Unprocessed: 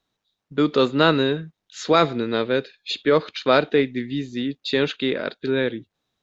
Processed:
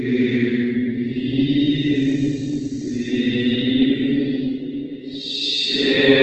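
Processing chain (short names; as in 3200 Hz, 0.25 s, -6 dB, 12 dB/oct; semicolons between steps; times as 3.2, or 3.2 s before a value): de-hum 146.2 Hz, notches 35; Paulstretch 7.5×, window 0.10 s, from 3.94; on a send: delay with a stepping band-pass 0.632 s, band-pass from 270 Hz, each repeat 0.7 oct, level -7.5 dB; on the sum: gain +7 dB; Opus 16 kbps 48000 Hz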